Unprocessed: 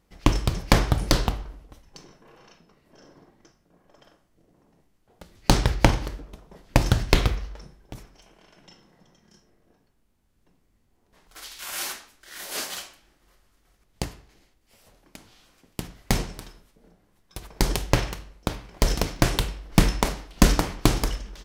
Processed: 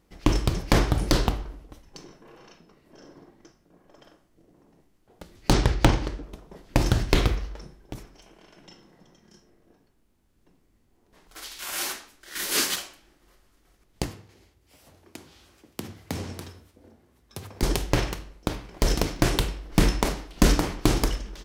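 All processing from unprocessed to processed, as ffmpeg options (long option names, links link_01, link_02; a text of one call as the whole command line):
ffmpeg -i in.wav -filter_complex "[0:a]asettb=1/sr,asplit=3[link_01][link_02][link_03];[link_01]atrim=end=5.534[link_04];[link_02]atrim=start=5.53:end=6.23,asetpts=PTS-STARTPTS,afade=type=in:duration=0.004:curve=qsin,afade=type=out:start_time=0.696:duration=0.004:curve=qsin,lowpass=7200,aeval=exprs='0.473*(abs(mod(val(0)/0.473+3,4)-2)-1)':channel_layout=same[link_05];[link_03]atrim=start=6.226[link_06];[link_04][link_05]acrossfade=duration=0.004:curve1=hsin:curve2=qsin[link_07];[link_07][link_06]acrossfade=duration=0.004:curve1=qsin:curve2=hsin,asettb=1/sr,asplit=3[link_08][link_09][link_10];[link_08]atrim=end=12.354[link_11];[link_09]atrim=start=12.35:end=12.76,asetpts=PTS-STARTPTS,afade=type=in:duration=0.004:curve=qsin,afade=type=out:start_time=0.406:duration=0.004:curve=qsin,acontrast=71,equalizer=frequency=680:width_type=o:width=0.75:gain=-11[link_12];[link_10]atrim=start=12.756[link_13];[link_11][link_12]acrossfade=duration=0.004:curve1=hsin:curve2=qsin[link_14];[link_14][link_13]acrossfade=duration=0.004:curve1=qsin:curve2=hsin,asettb=1/sr,asplit=3[link_15][link_16][link_17];[link_15]atrim=end=14.074[link_18];[link_16]atrim=start=14.07:end=17.63,asetpts=PTS-STARTPTS,afade=type=in:duration=0.004:curve=qsin,afade=type=out:start_time=3.556:duration=0.004:curve=qsin,acompressor=threshold=-32dB:ratio=3:attack=3.2:release=140:knee=1:detection=peak,afreqshift=51[link_19];[link_17]atrim=start=17.626[link_20];[link_18][link_19]acrossfade=duration=0.004:curve1=hsin:curve2=qsin[link_21];[link_21][link_20]acrossfade=duration=0.004:curve1=qsin:curve2=hsin,equalizer=frequency=330:width_type=o:width=0.8:gain=4.5,alimiter=level_in=5.5dB:limit=-1dB:release=50:level=0:latency=1,volume=-4.5dB" out.wav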